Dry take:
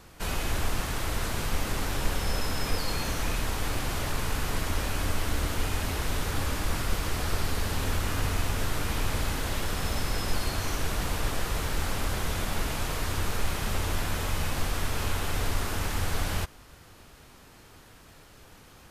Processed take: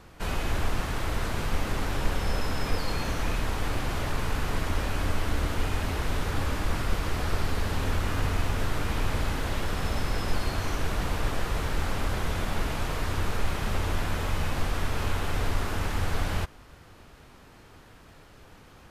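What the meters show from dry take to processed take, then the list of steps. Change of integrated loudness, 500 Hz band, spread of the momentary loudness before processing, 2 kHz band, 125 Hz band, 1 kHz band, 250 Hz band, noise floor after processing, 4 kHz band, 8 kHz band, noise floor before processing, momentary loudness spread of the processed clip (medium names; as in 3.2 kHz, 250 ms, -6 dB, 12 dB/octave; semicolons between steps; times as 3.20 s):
0.0 dB, +1.5 dB, 1 LU, 0.0 dB, +1.5 dB, +1.0 dB, +1.5 dB, -52 dBFS, -2.5 dB, -5.5 dB, -53 dBFS, 1 LU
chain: treble shelf 4.5 kHz -9.5 dB; trim +1.5 dB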